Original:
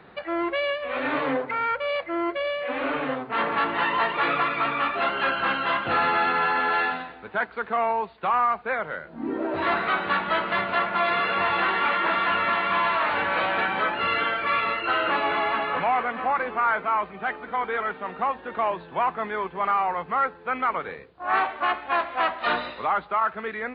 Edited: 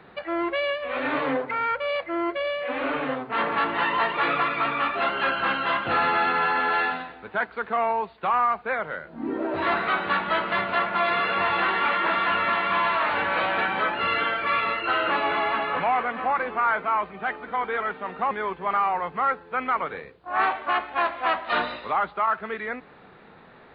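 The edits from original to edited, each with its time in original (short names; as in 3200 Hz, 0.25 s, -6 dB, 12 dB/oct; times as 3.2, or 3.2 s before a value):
18.31–19.25 cut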